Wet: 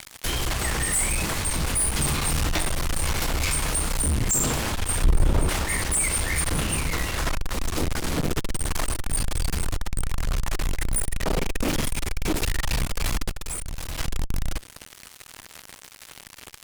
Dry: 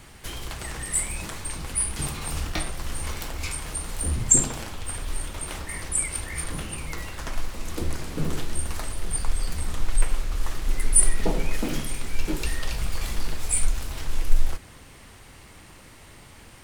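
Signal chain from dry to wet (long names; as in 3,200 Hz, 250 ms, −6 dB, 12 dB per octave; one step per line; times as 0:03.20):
fuzz pedal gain 34 dB, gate −42 dBFS
0:05.04–0:05.49: tilt shelving filter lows +8.5 dB, about 1,100 Hz
0:13.29–0:13.99: downward compressor 3 to 1, threshold −23 dBFS, peak gain reduction 8 dB
one half of a high-frequency compander encoder only
level −7 dB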